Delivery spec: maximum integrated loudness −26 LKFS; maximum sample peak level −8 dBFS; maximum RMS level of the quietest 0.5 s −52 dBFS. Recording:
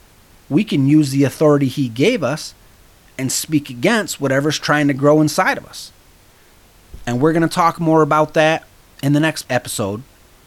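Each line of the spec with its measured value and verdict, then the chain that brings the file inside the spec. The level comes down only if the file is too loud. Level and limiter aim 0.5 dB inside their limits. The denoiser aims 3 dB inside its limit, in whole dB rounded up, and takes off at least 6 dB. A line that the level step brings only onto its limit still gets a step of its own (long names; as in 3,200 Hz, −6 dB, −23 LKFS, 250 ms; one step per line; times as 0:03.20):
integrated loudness −16.5 LKFS: out of spec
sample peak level −2.5 dBFS: out of spec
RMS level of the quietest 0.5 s −49 dBFS: out of spec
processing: level −10 dB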